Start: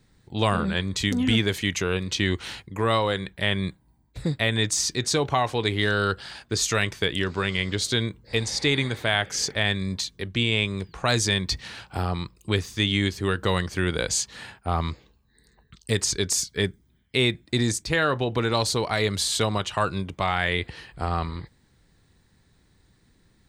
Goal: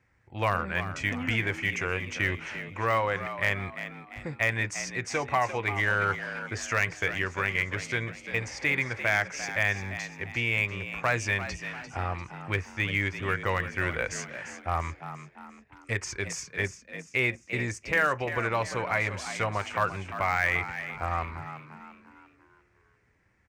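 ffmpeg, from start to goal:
-filter_complex "[0:a]firequalizer=gain_entry='entry(100,0);entry(170,-10);entry(500,-1);entry(2300,5);entry(3800,-20);entry(5600,-7);entry(11000,-21)':delay=0.05:min_phase=1,aeval=exprs='0.237*(cos(1*acos(clip(val(0)/0.237,-1,1)))-cos(1*PI/2))+0.00668*(cos(6*acos(clip(val(0)/0.237,-1,1)))-cos(6*PI/2))+0.00596*(cos(8*acos(clip(val(0)/0.237,-1,1)))-cos(8*PI/2))':c=same,highpass=55,lowshelf=f=200:g=-3,bandreject=f=430:w=12,asplit=2[a][b];[b]asplit=5[c][d][e][f][g];[c]adelay=346,afreqshift=68,volume=-11dB[h];[d]adelay=692,afreqshift=136,volume=-18.1dB[i];[e]adelay=1038,afreqshift=204,volume=-25.3dB[j];[f]adelay=1384,afreqshift=272,volume=-32.4dB[k];[g]adelay=1730,afreqshift=340,volume=-39.5dB[l];[h][i][j][k][l]amix=inputs=5:normalize=0[m];[a][m]amix=inputs=2:normalize=0,volume=-2.5dB"

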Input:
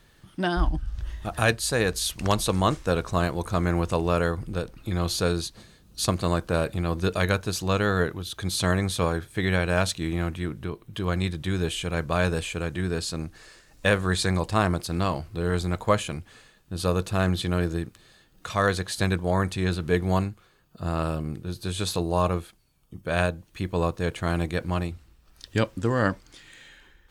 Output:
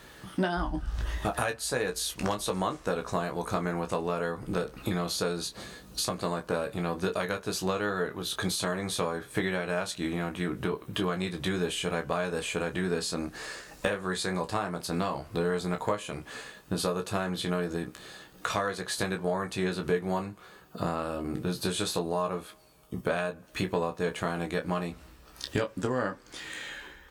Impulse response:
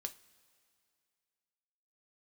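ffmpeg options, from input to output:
-filter_complex "[0:a]highpass=47,equalizer=f=87:w=0.57:g=-12,acompressor=threshold=-38dB:ratio=12,aecho=1:1:16|29:0.473|0.335,asplit=2[a][b];[1:a]atrim=start_sample=2205,lowpass=2.1k[c];[b][c]afir=irnorm=-1:irlink=0,volume=-2.5dB[d];[a][d]amix=inputs=2:normalize=0,volume=8dB"

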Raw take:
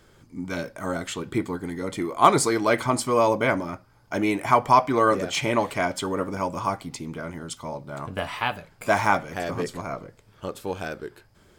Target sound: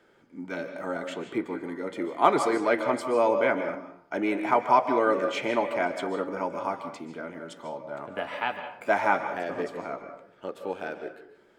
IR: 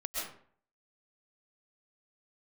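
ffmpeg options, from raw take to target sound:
-filter_complex "[0:a]acrossover=split=210 2900:gain=0.0794 1 0.251[a][b][c];[a][b][c]amix=inputs=3:normalize=0,bandreject=f=1.1k:w=6.9,asplit=2[d][e];[1:a]atrim=start_sample=2205,asetrate=39249,aresample=44100,lowpass=9k[f];[e][f]afir=irnorm=-1:irlink=0,volume=-9dB[g];[d][g]amix=inputs=2:normalize=0,volume=-4dB"

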